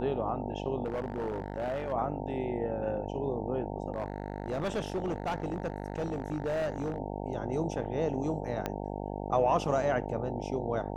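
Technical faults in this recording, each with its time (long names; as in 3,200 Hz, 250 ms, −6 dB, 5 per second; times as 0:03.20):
mains buzz 50 Hz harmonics 18 −37 dBFS
0:00.84–0:01.93: clipping −29 dBFS
0:03.94–0:06.98: clipping −28 dBFS
0:08.66: click −17 dBFS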